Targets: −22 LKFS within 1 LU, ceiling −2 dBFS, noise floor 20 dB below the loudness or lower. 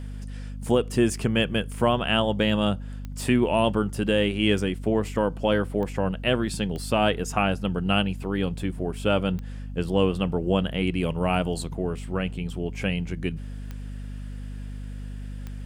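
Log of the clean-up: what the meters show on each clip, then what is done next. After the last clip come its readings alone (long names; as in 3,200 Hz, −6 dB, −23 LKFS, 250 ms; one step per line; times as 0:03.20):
number of clicks 6; mains hum 50 Hz; hum harmonics up to 250 Hz; level of the hum −33 dBFS; integrated loudness −25.5 LKFS; sample peak −9.5 dBFS; target loudness −22.0 LKFS
→ click removal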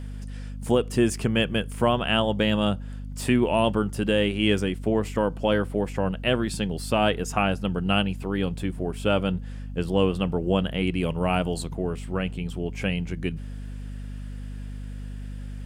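number of clicks 0; mains hum 50 Hz; hum harmonics up to 250 Hz; level of the hum −33 dBFS
→ hum removal 50 Hz, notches 5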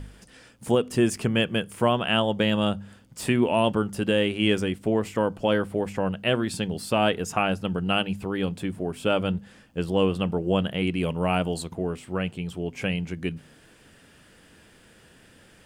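mains hum none found; integrated loudness −25.5 LKFS; sample peak −9.5 dBFS; target loudness −22.0 LKFS
→ level +3.5 dB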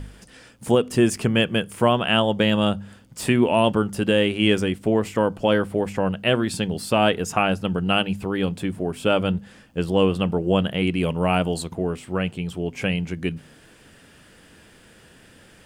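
integrated loudness −22.0 LKFS; sample peak −6.0 dBFS; background noise floor −51 dBFS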